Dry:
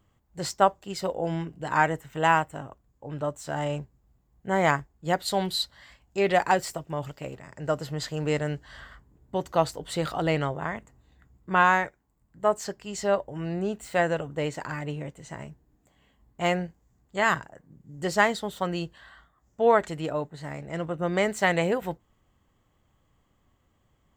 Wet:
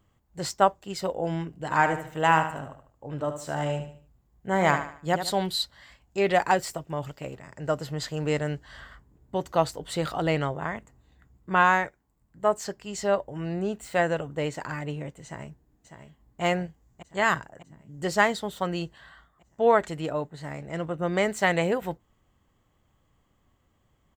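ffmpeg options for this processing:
-filter_complex "[0:a]asettb=1/sr,asplit=3[a][b][c];[a]atrim=end=1.634[d];[b]atrim=start=1.63:end=5.32,asetpts=PTS-STARTPTS,afade=t=in:d=0.004:c=qsin,afade=t=out:st=3.686:d=0.004:c=qsin,aecho=1:1:74|148|222|296:0.355|0.131|0.0486|0.018,atrim=end_sample=162729[e];[c]atrim=start=5.316[f];[d][e]acrossfade=d=0.004:c1=hsin:c2=qsin[g];[g][f]acrossfade=d=0.004:c1=qsin:c2=hsin,asplit=2[h][i];[i]afade=t=in:st=15.24:d=0.01,afade=t=out:st=16.42:d=0.01,aecho=0:1:600|1200|1800|2400|3000|3600|4200|4800|5400:0.354813|0.230629|0.149909|0.0974406|0.0633364|0.0411687|0.0267596|0.0173938|0.0113059[j];[h][j]amix=inputs=2:normalize=0"

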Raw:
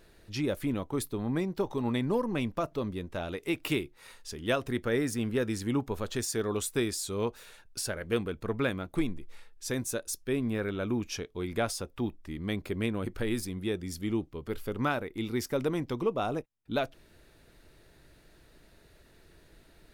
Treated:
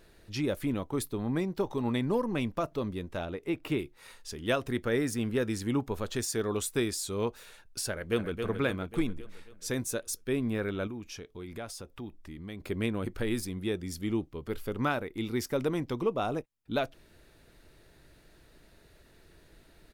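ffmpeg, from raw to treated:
-filter_complex "[0:a]asettb=1/sr,asplit=3[a][b][c];[a]atrim=end=3.254[d];[b]atrim=start=3.25:end=3.79,asetpts=PTS-STARTPTS,afade=t=in:d=0.004:c=qsin,afade=t=out:st=0.536:d=0.004:c=qsin,highshelf=f=2.4k:g=-12[e];[c]atrim=start=3.786[f];[d][e]acrossfade=d=0.004:c1=hsin:c2=qsin[g];[g][f]acrossfade=d=0.004:c1=qsin:c2=hsin,asplit=2[h][i];[i]afade=t=in:st=7.91:d=0.01,afade=t=out:st=8.45:d=0.01,aecho=0:1:270|540|810|1080|1350|1620|1890:0.473151|0.260233|0.143128|0.0787205|0.0432963|0.023813|0.0130971[j];[h][j]amix=inputs=2:normalize=0,asettb=1/sr,asplit=3[k][l][m];[k]atrim=end=10.874[n];[l]atrim=start=10.87:end=12.6,asetpts=PTS-STARTPTS,afade=t=in:d=0.004:c=qsin,afade=t=out:st=1.726:d=0.004:c=qsin,acompressor=threshold=-44dB:ratio=2:attack=3.2:release=140:knee=1:detection=peak[o];[m]atrim=start=12.596[p];[n][o]acrossfade=d=0.004:c1=hsin:c2=qsin[q];[q][p]acrossfade=d=0.004:c1=qsin:c2=hsin"

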